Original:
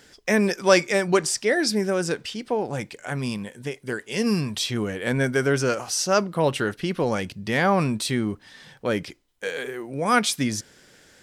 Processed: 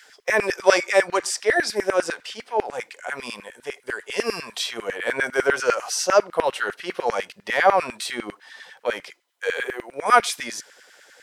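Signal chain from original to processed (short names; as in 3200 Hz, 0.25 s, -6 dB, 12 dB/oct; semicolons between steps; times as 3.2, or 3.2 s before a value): harmonic-percussive split harmonic +7 dB; LFO high-pass saw down 10 Hz 430–2100 Hz; gain -3.5 dB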